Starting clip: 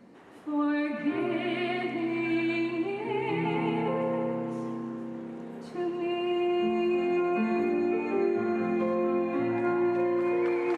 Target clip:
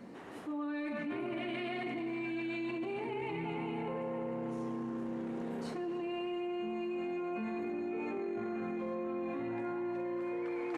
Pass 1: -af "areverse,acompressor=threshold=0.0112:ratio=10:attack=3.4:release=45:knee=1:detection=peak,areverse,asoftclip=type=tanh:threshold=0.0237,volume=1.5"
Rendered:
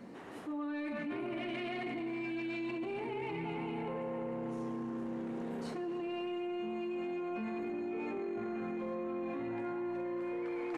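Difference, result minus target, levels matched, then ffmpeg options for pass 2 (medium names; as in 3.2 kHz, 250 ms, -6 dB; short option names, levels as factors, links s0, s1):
saturation: distortion +17 dB
-af "areverse,acompressor=threshold=0.0112:ratio=10:attack=3.4:release=45:knee=1:detection=peak,areverse,asoftclip=type=tanh:threshold=0.0668,volume=1.5"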